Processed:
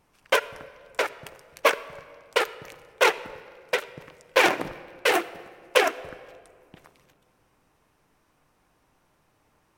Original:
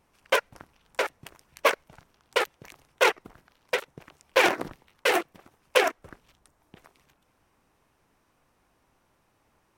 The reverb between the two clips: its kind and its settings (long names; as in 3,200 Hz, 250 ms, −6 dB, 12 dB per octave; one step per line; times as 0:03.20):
rectangular room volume 3,900 cubic metres, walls mixed, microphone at 0.46 metres
level +1.5 dB